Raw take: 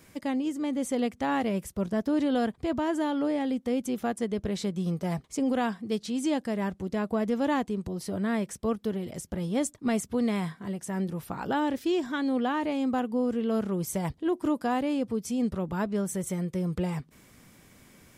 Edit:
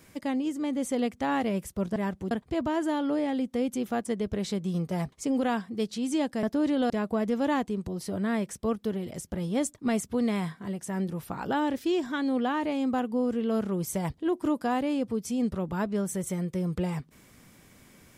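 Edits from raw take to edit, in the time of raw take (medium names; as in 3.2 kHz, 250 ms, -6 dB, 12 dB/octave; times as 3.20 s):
1.96–2.43 s: swap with 6.55–6.90 s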